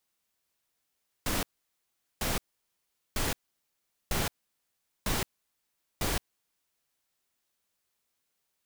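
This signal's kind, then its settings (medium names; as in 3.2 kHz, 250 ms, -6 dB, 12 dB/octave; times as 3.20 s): noise bursts pink, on 0.17 s, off 0.78 s, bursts 6, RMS -29.5 dBFS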